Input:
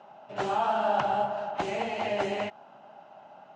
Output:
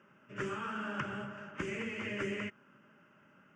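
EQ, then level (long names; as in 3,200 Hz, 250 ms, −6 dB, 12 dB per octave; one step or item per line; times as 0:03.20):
parametric band 850 Hz −14.5 dB 0.56 octaves
phaser with its sweep stopped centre 1,700 Hz, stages 4
0.0 dB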